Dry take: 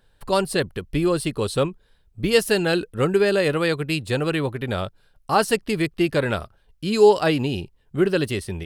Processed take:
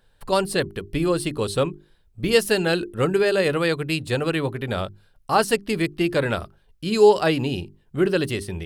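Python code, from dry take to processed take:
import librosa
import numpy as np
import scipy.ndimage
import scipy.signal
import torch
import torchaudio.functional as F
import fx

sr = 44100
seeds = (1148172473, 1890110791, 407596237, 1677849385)

y = fx.hum_notches(x, sr, base_hz=50, count=8)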